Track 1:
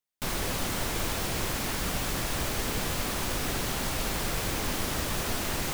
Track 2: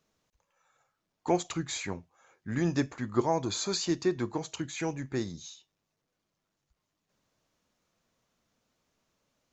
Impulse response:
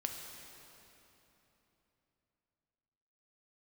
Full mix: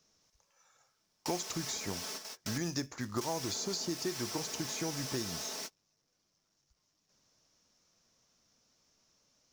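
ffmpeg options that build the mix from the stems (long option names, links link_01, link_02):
-filter_complex "[0:a]highpass=370,aecho=1:1:4.6:0.96,volume=-11dB,asplit=3[link_01][link_02][link_03];[link_01]atrim=end=2.58,asetpts=PTS-STARTPTS,afade=type=out:start_time=2.576:duration=0.004:curve=hsin[link_04];[link_02]atrim=start=2.58:end=3.21,asetpts=PTS-STARTPTS,volume=0[link_05];[link_03]atrim=start=3.21,asetpts=PTS-STARTPTS,afade=type=in:duration=0.004:curve=hsin[link_06];[link_04][link_05][link_06]concat=n=3:v=0:a=1[link_07];[1:a]acrusher=bits=6:mode=log:mix=0:aa=0.000001,volume=0dB,asplit=2[link_08][link_09];[link_09]apad=whole_len=253129[link_10];[link_07][link_10]sidechaingate=range=-44dB:threshold=-60dB:ratio=16:detection=peak[link_11];[link_11][link_08]amix=inputs=2:normalize=0,equalizer=frequency=5500:width=2.1:gain=14.5,acrossover=split=860|7100[link_12][link_13][link_14];[link_12]acompressor=threshold=-35dB:ratio=4[link_15];[link_13]acompressor=threshold=-41dB:ratio=4[link_16];[link_14]acompressor=threshold=-47dB:ratio=4[link_17];[link_15][link_16][link_17]amix=inputs=3:normalize=0"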